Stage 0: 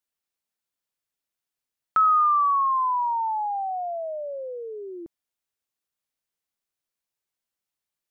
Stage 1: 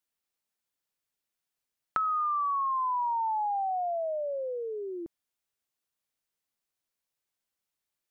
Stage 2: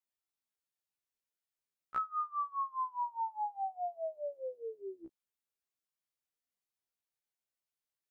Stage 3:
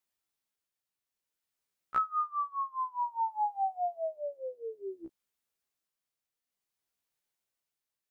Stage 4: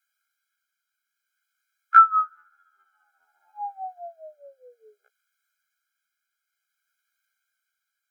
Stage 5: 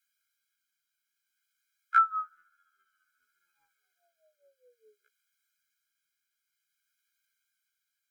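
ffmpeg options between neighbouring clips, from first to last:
-af "acompressor=threshold=-27dB:ratio=12"
-af "afftfilt=real='re*1.73*eq(mod(b,3),0)':imag='im*1.73*eq(mod(b,3),0)':win_size=2048:overlap=0.75,volume=-6dB"
-af "tremolo=f=0.56:d=0.4,volume=6dB"
-af "afreqshift=43,highpass=f=1.5k:t=q:w=5.6,afftfilt=real='re*eq(mod(floor(b*sr/1024/420),2),1)':imag='im*eq(mod(floor(b*sr/1024/420),2),1)':win_size=1024:overlap=0.75,volume=7.5dB"
-af "asuperstop=centerf=770:order=4:qfactor=0.51"

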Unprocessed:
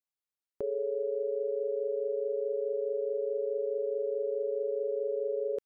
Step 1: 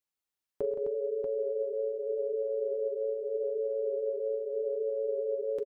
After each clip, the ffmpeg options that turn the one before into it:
-filter_complex "[0:a]flanger=delay=2.1:depth=4.7:regen=-53:speed=0.81:shape=sinusoidal,asplit=2[a][b];[b]aecho=0:1:42|108|131|169|259|637:0.178|0.1|0.224|0.299|0.422|0.531[c];[a][c]amix=inputs=2:normalize=0,volume=6dB"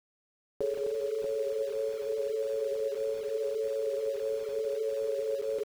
-af "aeval=exprs='val(0)*gte(abs(val(0)),0.0075)':c=same"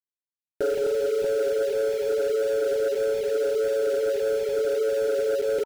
-af "aeval=exprs='0.0841*sin(PI/2*1.58*val(0)/0.0841)':c=same,asuperstop=centerf=1100:order=20:qfactor=3.2,volume=2dB"

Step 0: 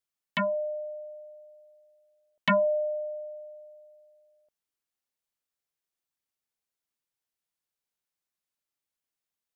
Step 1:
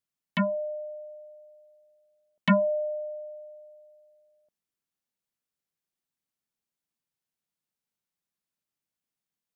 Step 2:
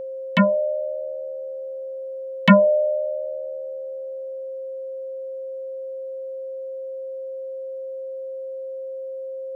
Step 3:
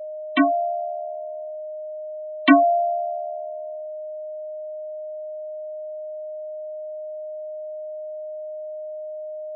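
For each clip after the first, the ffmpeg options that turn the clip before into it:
-af "equalizer=f=180:w=0.97:g=9.5,volume=-2dB"
-af "aeval=exprs='val(0)+0.0126*sin(2*PI*530*n/s)':c=same,volume=9dB"
-af "afreqshift=86,afftfilt=real='re*gte(hypot(re,im),0.0891)':imag='im*gte(hypot(re,im),0.0891)':win_size=1024:overlap=0.75,bandreject=f=50:t=h:w=6,bandreject=f=100:t=h:w=6,bandreject=f=150:t=h:w=6,bandreject=f=200:t=h:w=6,volume=-1dB"

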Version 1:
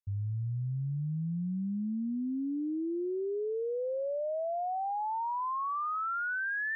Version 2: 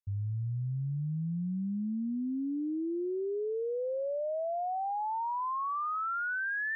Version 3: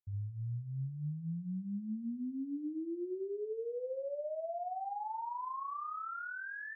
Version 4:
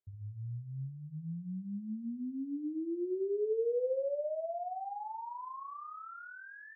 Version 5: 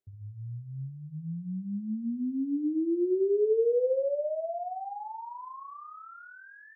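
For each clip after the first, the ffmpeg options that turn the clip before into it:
-af anull
-af "lowpass=1.4k,aecho=1:1:60|136:0.447|0.15,volume=-6.5dB"
-af "lowpass=f=1k:p=1,equalizer=f=470:w=1.4:g=10.5,bandreject=f=50:t=h:w=6,bandreject=f=100:t=h:w=6,bandreject=f=150:t=h:w=6,volume=-2dB"
-af "equalizer=f=330:t=o:w=2.4:g=11,volume=-2.5dB"

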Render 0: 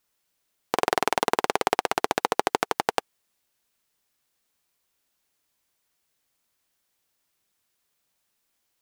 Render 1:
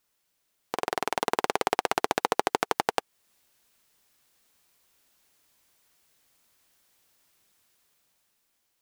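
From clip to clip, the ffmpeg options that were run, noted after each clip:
-af "alimiter=limit=-11.5dB:level=0:latency=1:release=350,dynaudnorm=f=220:g=11:m=8dB"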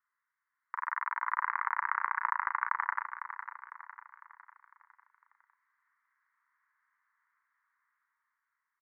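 -filter_complex "[0:a]asuperpass=centerf=1400:order=12:qfactor=1.3,asplit=2[a][b];[b]adelay=35,volume=-5.5dB[c];[a][c]amix=inputs=2:normalize=0,aecho=1:1:503|1006|1509|2012|2515:0.335|0.154|0.0709|0.0326|0.015"

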